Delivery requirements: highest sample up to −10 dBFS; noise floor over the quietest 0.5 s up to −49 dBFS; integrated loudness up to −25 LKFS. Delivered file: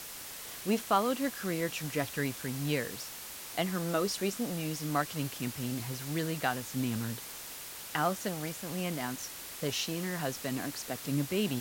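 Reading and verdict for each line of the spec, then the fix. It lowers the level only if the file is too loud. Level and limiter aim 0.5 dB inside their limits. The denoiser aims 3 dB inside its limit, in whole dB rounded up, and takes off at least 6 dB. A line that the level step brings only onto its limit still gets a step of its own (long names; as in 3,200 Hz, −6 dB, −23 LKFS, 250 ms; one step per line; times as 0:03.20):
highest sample −14.0 dBFS: in spec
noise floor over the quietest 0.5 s −44 dBFS: out of spec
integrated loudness −34.0 LKFS: in spec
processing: broadband denoise 8 dB, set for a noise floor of −44 dBFS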